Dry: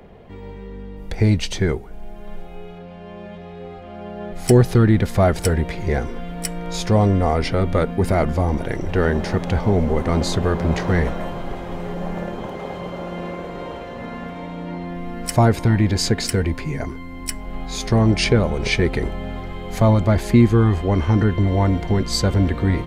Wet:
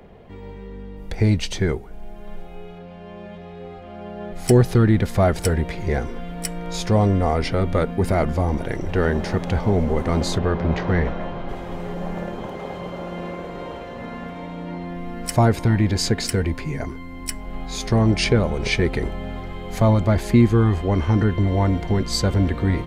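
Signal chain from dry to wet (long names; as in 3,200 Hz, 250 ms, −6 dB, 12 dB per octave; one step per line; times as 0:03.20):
0:10.38–0:11.49: low-pass filter 3,900 Hz 12 dB per octave
level −1.5 dB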